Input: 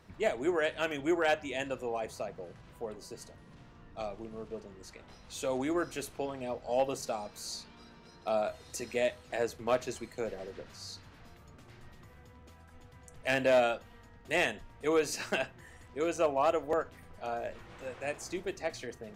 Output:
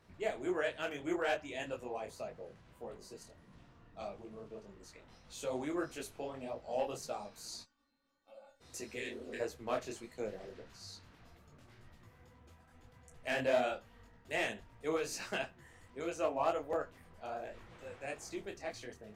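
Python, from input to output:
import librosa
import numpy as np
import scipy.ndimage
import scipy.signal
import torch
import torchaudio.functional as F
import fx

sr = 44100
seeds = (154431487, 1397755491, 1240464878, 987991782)

y = fx.stiff_resonator(x, sr, f0_hz=270.0, decay_s=0.45, stiffness=0.008, at=(7.62, 8.6), fade=0.02)
y = fx.spec_repair(y, sr, seeds[0], start_s=8.98, length_s=0.4, low_hz=230.0, high_hz=1500.0, source='before')
y = fx.detune_double(y, sr, cents=58)
y = y * librosa.db_to_amplitude(-2.0)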